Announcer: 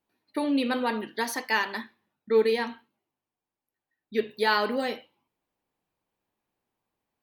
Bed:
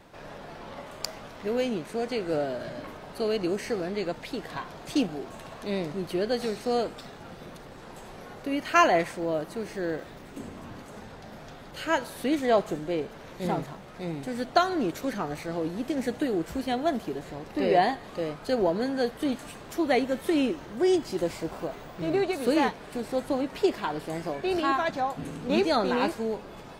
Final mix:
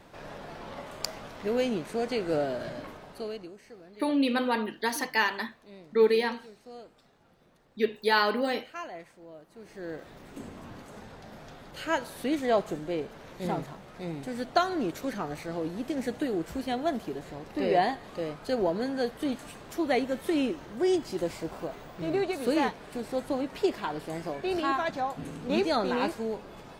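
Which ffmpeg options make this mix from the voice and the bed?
-filter_complex "[0:a]adelay=3650,volume=1[s0];[1:a]volume=7.08,afade=t=out:st=2.67:d=0.85:silence=0.105925,afade=t=in:st=9.49:d=0.83:silence=0.141254[s1];[s0][s1]amix=inputs=2:normalize=0"

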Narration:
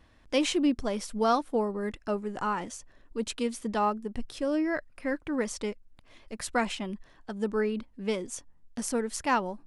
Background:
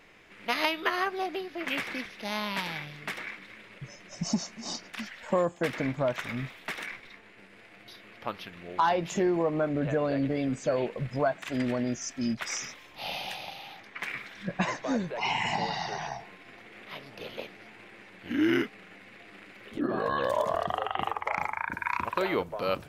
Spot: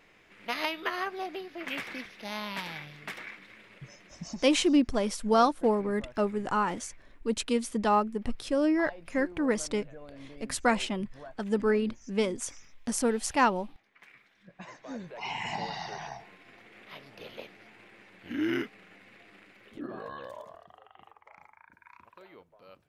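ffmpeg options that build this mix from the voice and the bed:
-filter_complex "[0:a]adelay=4100,volume=1.33[s0];[1:a]volume=3.76,afade=t=out:st=3.96:d=0.57:silence=0.158489,afade=t=in:st=14.56:d=1.01:silence=0.16788,afade=t=out:st=19.15:d=1.46:silence=0.1[s1];[s0][s1]amix=inputs=2:normalize=0"

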